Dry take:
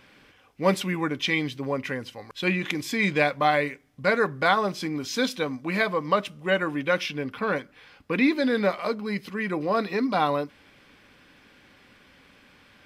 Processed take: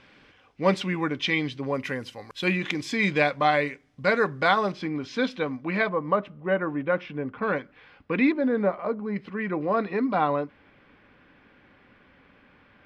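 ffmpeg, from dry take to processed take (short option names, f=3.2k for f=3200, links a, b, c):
-af "asetnsamples=n=441:p=0,asendcmd='1.74 lowpass f 12000;2.57 lowpass f 6800;4.72 lowpass f 2900;5.89 lowpass f 1400;7.42 lowpass f 2800;8.32 lowpass f 1200;9.16 lowpass f 2100',lowpass=5.2k"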